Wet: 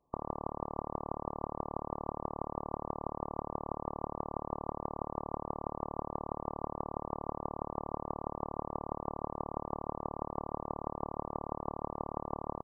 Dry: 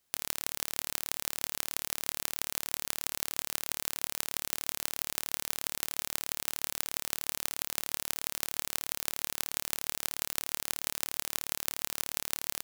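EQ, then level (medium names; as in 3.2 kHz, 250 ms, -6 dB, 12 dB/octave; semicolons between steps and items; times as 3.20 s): brick-wall FIR low-pass 1.2 kHz; +10.0 dB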